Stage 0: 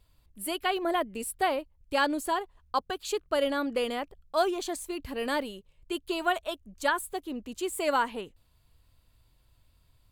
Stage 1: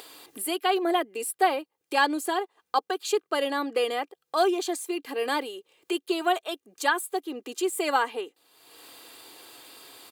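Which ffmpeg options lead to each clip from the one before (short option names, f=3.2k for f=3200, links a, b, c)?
-af "highpass=f=280:w=0.5412,highpass=f=280:w=1.3066,aecho=1:1:2.5:0.53,acompressor=mode=upward:threshold=-32dB:ratio=2.5,volume=2.5dB"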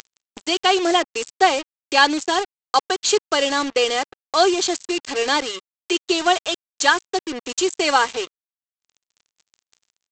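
-af "aresample=16000,acrusher=bits=5:mix=0:aa=0.5,aresample=44100,highshelf=f=2.8k:g=10.5,volume=5.5dB"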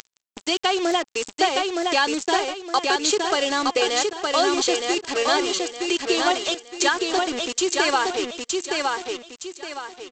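-filter_complex "[0:a]acompressor=threshold=-19dB:ratio=2.5,asplit=2[a][b];[b]aecho=0:1:916|1832|2748|3664|4580:0.708|0.248|0.0867|0.0304|0.0106[c];[a][c]amix=inputs=2:normalize=0"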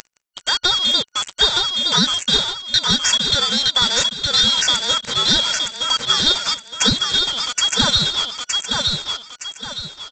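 -af "afftfilt=real='real(if(lt(b,272),68*(eq(floor(b/68),0)*1+eq(floor(b/68),1)*3+eq(floor(b/68),2)*0+eq(floor(b/68),3)*2)+mod(b,68),b),0)':imag='imag(if(lt(b,272),68*(eq(floor(b/68),0)*1+eq(floor(b/68),1)*3+eq(floor(b/68),2)*0+eq(floor(b/68),3)*2)+mod(b,68),b),0)':win_size=2048:overlap=0.75,volume=4dB"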